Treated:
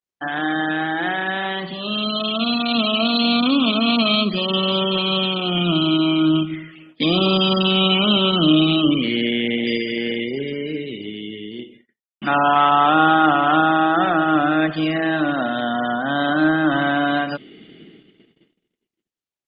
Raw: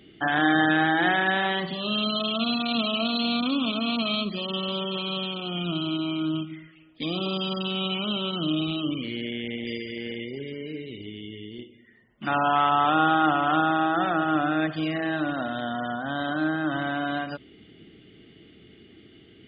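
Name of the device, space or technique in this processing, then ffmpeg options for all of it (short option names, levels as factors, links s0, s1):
video call: -af "highpass=f=140:w=0.5412,highpass=f=140:w=1.3066,dynaudnorm=f=650:g=7:m=5.01,agate=range=0.00398:threshold=0.00631:ratio=16:detection=peak,volume=0.891" -ar 48000 -c:a libopus -b:a 32k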